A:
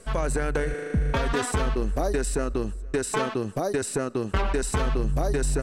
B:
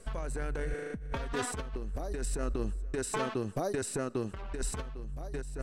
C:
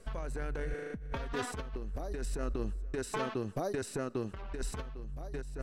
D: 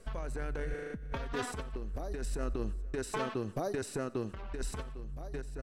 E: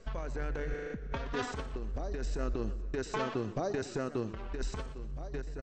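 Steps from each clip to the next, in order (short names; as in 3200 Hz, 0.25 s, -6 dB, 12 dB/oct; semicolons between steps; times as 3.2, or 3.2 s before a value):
low shelf 64 Hz +6.5 dB; negative-ratio compressor -24 dBFS, ratio -0.5; gain -9 dB
bell 8500 Hz -7.5 dB 0.5 oct; gain -2 dB
feedback echo 90 ms, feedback 42%, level -21.5 dB
downsampling 16000 Hz; warbling echo 0.124 s, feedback 46%, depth 190 cents, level -15.5 dB; gain +1 dB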